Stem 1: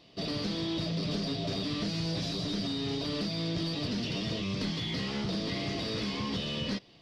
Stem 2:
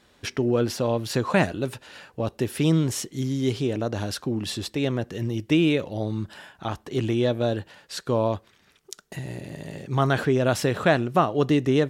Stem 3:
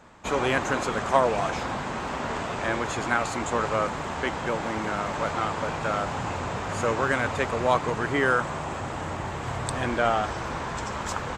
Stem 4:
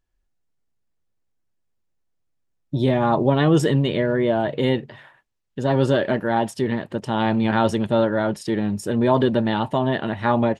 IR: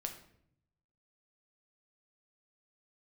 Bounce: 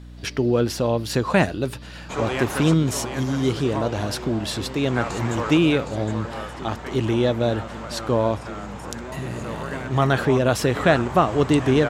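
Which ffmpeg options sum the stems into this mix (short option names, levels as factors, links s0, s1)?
-filter_complex "[0:a]volume=0.158[s0];[1:a]volume=1.33[s1];[2:a]adelay=1850,volume=0.794,asplit=2[s2][s3];[s3]volume=0.422[s4];[3:a]acompressor=threshold=0.0891:ratio=6,volume=0.251,asplit=2[s5][s6];[s6]apad=whole_len=583083[s7];[s2][s7]sidechaincompress=threshold=0.00282:ratio=8:attack=16:release=215[s8];[s4]aecho=0:1:764:1[s9];[s0][s1][s8][s5][s9]amix=inputs=5:normalize=0,aeval=exprs='val(0)+0.0112*(sin(2*PI*60*n/s)+sin(2*PI*2*60*n/s)/2+sin(2*PI*3*60*n/s)/3+sin(2*PI*4*60*n/s)/4+sin(2*PI*5*60*n/s)/5)':c=same"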